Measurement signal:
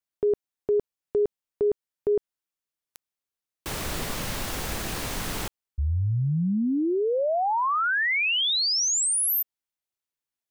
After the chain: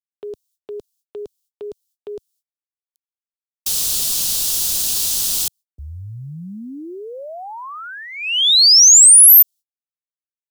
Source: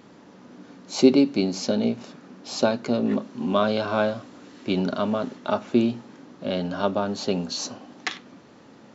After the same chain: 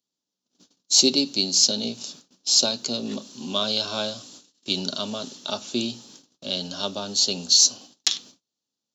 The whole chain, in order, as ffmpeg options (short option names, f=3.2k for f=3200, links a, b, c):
-filter_complex "[0:a]agate=range=-36dB:threshold=-41dB:ratio=16:release=389:detection=peak,acrossover=split=100[a][b];[b]aexciter=amount=12.4:drive=5.7:freq=3.1k[c];[a][c]amix=inputs=2:normalize=0,volume=-7.5dB"